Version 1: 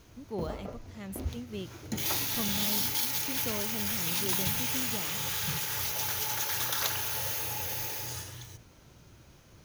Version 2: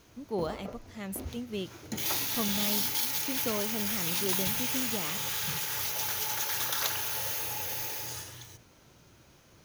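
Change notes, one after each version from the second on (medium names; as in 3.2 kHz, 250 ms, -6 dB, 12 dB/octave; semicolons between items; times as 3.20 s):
speech +5.0 dB; master: add bass shelf 130 Hz -8.5 dB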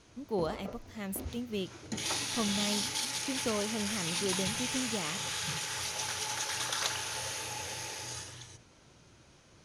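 background: add elliptic low-pass 10 kHz, stop band 70 dB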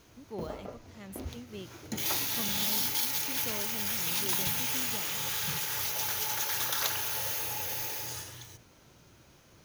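speech -8.0 dB; background: remove elliptic low-pass 10 kHz, stop band 70 dB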